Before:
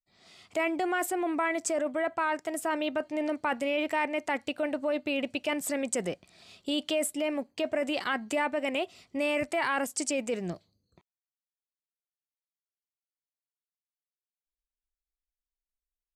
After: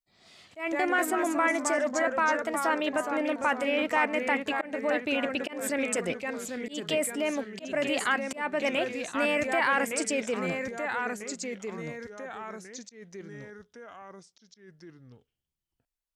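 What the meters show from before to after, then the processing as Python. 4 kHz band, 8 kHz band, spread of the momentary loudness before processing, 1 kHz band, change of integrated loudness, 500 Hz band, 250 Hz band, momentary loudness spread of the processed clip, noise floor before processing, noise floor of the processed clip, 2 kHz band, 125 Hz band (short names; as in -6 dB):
+1.0 dB, +1.5 dB, 5 LU, +3.5 dB, +2.0 dB, +1.5 dB, +1.0 dB, 17 LU, under -85 dBFS, under -85 dBFS, +5.0 dB, +3.0 dB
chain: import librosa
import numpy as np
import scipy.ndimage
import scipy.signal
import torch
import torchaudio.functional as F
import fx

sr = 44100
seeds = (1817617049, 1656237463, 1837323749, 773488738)

y = fx.echo_pitch(x, sr, ms=92, semitones=-2, count=3, db_per_echo=-6.0)
y = fx.auto_swell(y, sr, attack_ms=188.0)
y = fx.dynamic_eq(y, sr, hz=1600.0, q=0.96, threshold_db=-40.0, ratio=4.0, max_db=5)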